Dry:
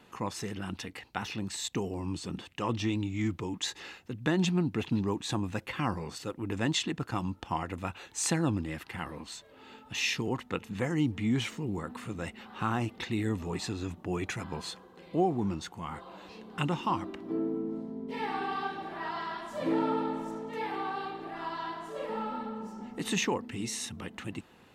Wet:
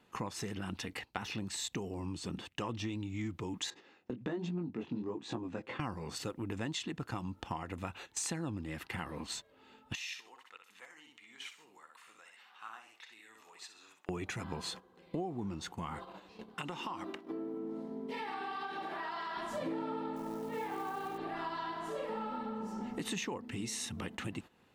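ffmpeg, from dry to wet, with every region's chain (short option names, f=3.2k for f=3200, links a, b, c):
-filter_complex "[0:a]asettb=1/sr,asplit=3[a][b][c];[a]atrim=end=3.704[d];[b]atrim=start=3.7:end=5.8,asetpts=PTS-STARTPTS,afade=t=in:d=0.004:c=qsin,afade=t=out:st=2.096:d=0.004:c=qsin,highpass=230,lowpass=6.1k,tiltshelf=f=830:g=6.5,flanger=delay=17:depth=7.4:speed=1.2[e];[c]atrim=start=5.796[f];[d][e]acrossfade=d=0.004:c1=hsin:c2=qsin[g];[g][f]acrossfade=d=0.004:c1=qsin:c2=hsin,asettb=1/sr,asplit=3[h][i][j];[h]atrim=end=9.954[k];[i]atrim=start=9.95:end=14.09,asetpts=PTS-STARTPTS,afade=t=in:d=0.004:c=qsin,afade=t=out:st=4.136:d=0.004:c=qsin,highpass=1.1k,aecho=1:1:63|126|189:0.562|0.101|0.0182,atrim=end_sample=182574,acompressor=threshold=-45dB:ratio=4:attack=3.2:release=140:knee=1:detection=peak[l];[j]atrim=start=14.086[m];[k][l]acrossfade=d=0.004:c1=hsin:c2=qsin[n];[n][m]acrossfade=d=0.004:c1=qsin:c2=hsin,asettb=1/sr,asplit=3[o][p][q];[o]atrim=end=16.544[r];[p]atrim=start=16.54:end=19.37,asetpts=PTS-STARTPTS,afade=t=in:d=0.004:c=qsin,afade=t=out:st=2.826:d=0.004:c=qsin,highpass=f=440:p=1,acompressor=threshold=-40dB:ratio=3:attack=3.2:release=140:knee=1:detection=peak[s];[q]atrim=start=19.366[t];[r][s]acrossfade=d=0.004:c1=hsin:c2=qsin[u];[u][t]acrossfade=d=0.004:c1=qsin:c2=hsin,asettb=1/sr,asplit=3[v][w][x];[v]atrim=end=20.164[y];[w]atrim=start=20.16:end=21.18,asetpts=PTS-STARTPTS,afade=t=in:d=0.004:c=qsin,afade=t=out:st=1.016:d=0.004:c=qsin,aemphasis=mode=reproduction:type=75kf,acrusher=bits=5:mode=log:mix=0:aa=0.000001[z];[x]atrim=start=21.176[aa];[y][z]acrossfade=d=0.004:c1=hsin:c2=qsin[ab];[ab][aa]acrossfade=d=0.004:c1=qsin:c2=hsin,agate=range=-15dB:threshold=-45dB:ratio=16:detection=peak,acompressor=threshold=-43dB:ratio=5,volume=6dB"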